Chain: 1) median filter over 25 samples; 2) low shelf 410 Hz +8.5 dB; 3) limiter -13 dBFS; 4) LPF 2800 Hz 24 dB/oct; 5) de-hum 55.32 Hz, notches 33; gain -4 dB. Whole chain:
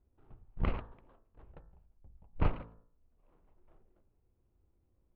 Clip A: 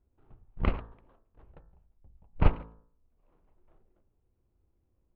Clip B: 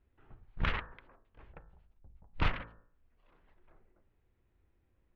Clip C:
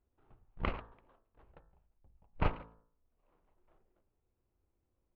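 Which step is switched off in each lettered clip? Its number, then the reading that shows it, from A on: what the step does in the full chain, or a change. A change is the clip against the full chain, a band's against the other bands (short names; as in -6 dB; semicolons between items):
3, crest factor change +5.0 dB; 1, 2 kHz band +13.5 dB; 2, 125 Hz band -5.0 dB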